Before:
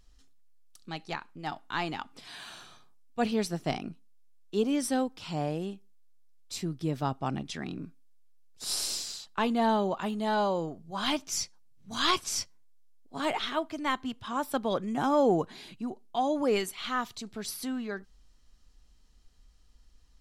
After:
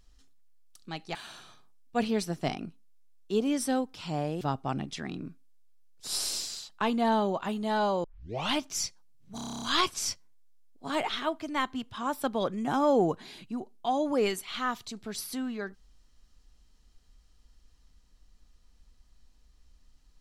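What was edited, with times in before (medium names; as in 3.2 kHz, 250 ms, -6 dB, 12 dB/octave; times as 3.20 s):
1.15–2.38 s: delete
5.64–6.98 s: delete
10.61 s: tape start 0.49 s
11.92 s: stutter 0.03 s, 10 plays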